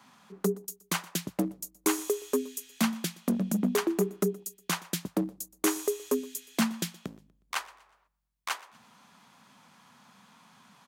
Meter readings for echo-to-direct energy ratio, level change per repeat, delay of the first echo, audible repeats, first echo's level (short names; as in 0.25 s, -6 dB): -21.5 dB, -8.5 dB, 0.121 s, 2, -22.0 dB